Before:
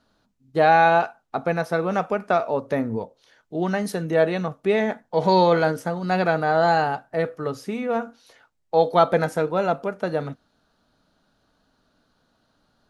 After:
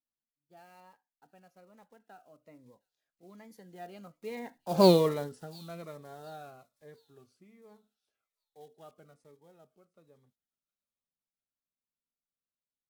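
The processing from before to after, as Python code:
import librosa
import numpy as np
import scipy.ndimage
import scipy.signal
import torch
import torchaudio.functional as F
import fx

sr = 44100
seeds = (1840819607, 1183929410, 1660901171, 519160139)

y = fx.block_float(x, sr, bits=5)
y = fx.doppler_pass(y, sr, speed_mps=31, closest_m=1.9, pass_at_s=4.86)
y = fx.echo_wet_highpass(y, sr, ms=713, feedback_pct=31, hz=3700.0, wet_db=-18)
y = fx.notch_cascade(y, sr, direction='falling', hz=1.2)
y = F.gain(torch.from_numpy(y), 1.5).numpy()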